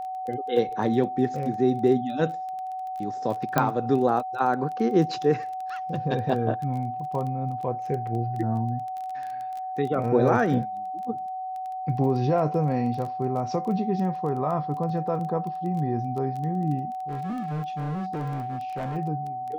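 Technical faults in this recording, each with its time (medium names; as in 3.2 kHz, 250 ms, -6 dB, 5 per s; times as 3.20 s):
crackle 16 per s -32 dBFS
whine 750 Hz -30 dBFS
3.58 s: pop -7 dBFS
17.09–18.97 s: clipped -27 dBFS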